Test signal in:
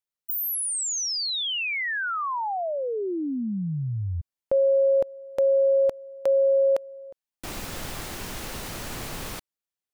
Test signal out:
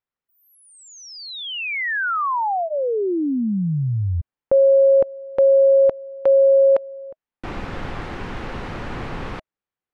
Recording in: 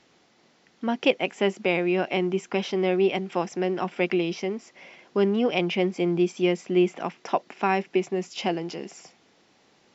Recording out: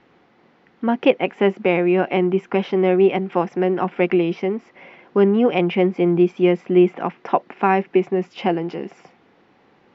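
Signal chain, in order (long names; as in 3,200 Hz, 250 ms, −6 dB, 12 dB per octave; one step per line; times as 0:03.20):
low-pass filter 2,000 Hz 12 dB per octave
notch filter 630 Hz, Q 12
level +7 dB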